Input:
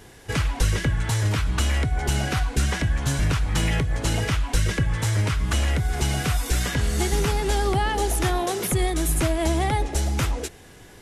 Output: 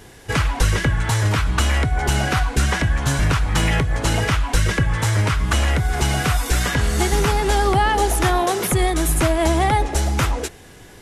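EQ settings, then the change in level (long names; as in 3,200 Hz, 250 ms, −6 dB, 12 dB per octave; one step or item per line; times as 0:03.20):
dynamic equaliser 1,100 Hz, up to +5 dB, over −39 dBFS, Q 0.78
+3.5 dB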